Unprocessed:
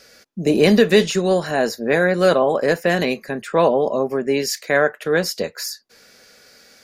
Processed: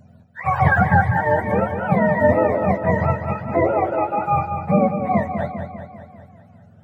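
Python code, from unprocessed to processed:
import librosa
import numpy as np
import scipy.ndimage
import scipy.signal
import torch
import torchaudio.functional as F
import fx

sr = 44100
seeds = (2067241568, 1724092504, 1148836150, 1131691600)

p1 = fx.octave_mirror(x, sr, pivot_hz=580.0)
y = p1 + fx.echo_feedback(p1, sr, ms=198, feedback_pct=57, wet_db=-8, dry=0)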